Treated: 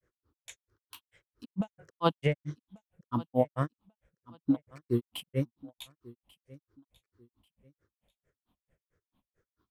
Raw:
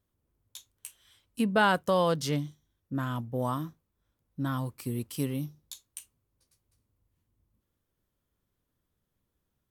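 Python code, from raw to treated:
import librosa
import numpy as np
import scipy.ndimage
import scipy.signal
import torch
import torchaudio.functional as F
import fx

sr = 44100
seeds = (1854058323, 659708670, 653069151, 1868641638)

p1 = fx.spec_ripple(x, sr, per_octave=0.52, drift_hz=-1.7, depth_db=15)
p2 = fx.bass_treble(p1, sr, bass_db=-5, treble_db=-15)
p3 = fx.over_compress(p2, sr, threshold_db=-28.0, ratio=-0.5)
p4 = fx.granulator(p3, sr, seeds[0], grain_ms=126.0, per_s=4.5, spray_ms=100.0, spread_st=0)
p5 = p4 + fx.echo_feedback(p4, sr, ms=1140, feedback_pct=28, wet_db=-21.5, dry=0)
y = F.gain(torch.from_numpy(p5), 6.0).numpy()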